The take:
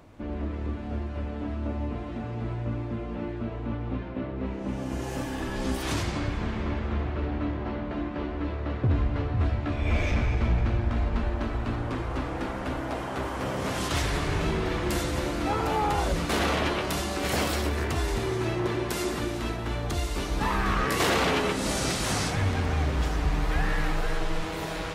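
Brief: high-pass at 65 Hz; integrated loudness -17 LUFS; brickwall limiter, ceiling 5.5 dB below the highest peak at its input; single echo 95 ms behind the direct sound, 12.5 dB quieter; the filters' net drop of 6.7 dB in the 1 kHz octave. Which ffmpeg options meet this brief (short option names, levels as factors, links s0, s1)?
-af "highpass=65,equalizer=f=1000:t=o:g=-9,alimiter=limit=0.0944:level=0:latency=1,aecho=1:1:95:0.237,volume=5.31"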